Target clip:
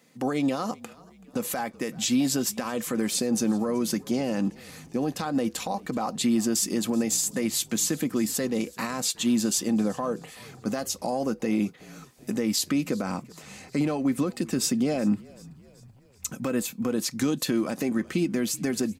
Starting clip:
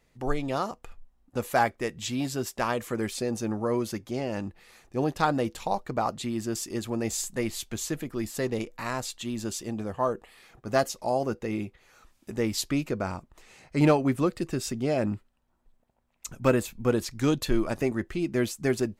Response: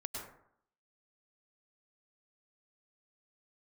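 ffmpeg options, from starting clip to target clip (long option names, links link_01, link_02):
-filter_complex "[0:a]highpass=frequency=160:width=0.5412,highpass=frequency=160:width=1.3066,acompressor=threshold=-28dB:ratio=5,aecho=1:1:3.9:0.32,alimiter=level_in=1dB:limit=-24dB:level=0:latency=1:release=68,volume=-1dB,bass=frequency=250:gain=7,treble=frequency=4000:gain=5,bandreject=frequency=890:width=24,asplit=5[link_01][link_02][link_03][link_04][link_05];[link_02]adelay=380,afreqshift=-42,volume=-22.5dB[link_06];[link_03]adelay=760,afreqshift=-84,volume=-27.9dB[link_07];[link_04]adelay=1140,afreqshift=-126,volume=-33.2dB[link_08];[link_05]adelay=1520,afreqshift=-168,volume=-38.6dB[link_09];[link_01][link_06][link_07][link_08][link_09]amix=inputs=5:normalize=0,volume=6dB"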